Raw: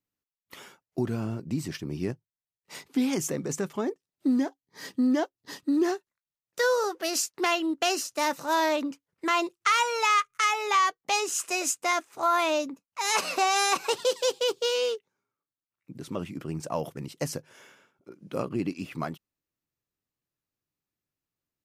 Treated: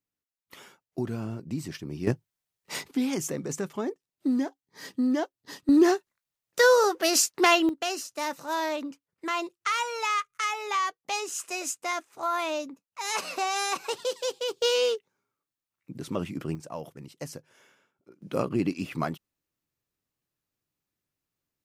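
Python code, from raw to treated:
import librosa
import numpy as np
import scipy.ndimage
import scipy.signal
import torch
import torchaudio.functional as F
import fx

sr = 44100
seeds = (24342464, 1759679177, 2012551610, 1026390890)

y = fx.gain(x, sr, db=fx.steps((0.0, -2.5), (2.07, 8.0), (2.91, -1.5), (5.69, 5.5), (7.69, -4.5), (14.62, 2.5), (16.55, -7.0), (18.22, 3.0)))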